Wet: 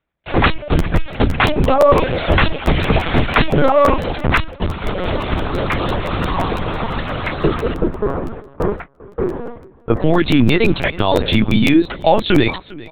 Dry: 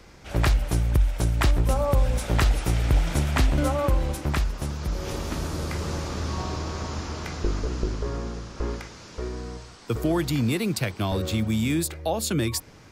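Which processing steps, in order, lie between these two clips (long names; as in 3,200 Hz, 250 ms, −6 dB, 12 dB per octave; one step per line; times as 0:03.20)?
loose part that buzzes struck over −18 dBFS, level −32 dBFS
high-pass filter 220 Hz 6 dB per octave
reverb reduction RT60 1 s
0:07.74–0:10.01: low-pass filter 1,300 Hz 12 dB per octave
noise gate −44 dBFS, range −39 dB
automatic gain control gain up to 3 dB
repeating echo 400 ms, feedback 26%, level −21.5 dB
linear-prediction vocoder at 8 kHz pitch kept
boost into a limiter +15.5 dB
regular buffer underruns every 0.17 s, samples 512, repeat, from 0:00.78
level −1 dB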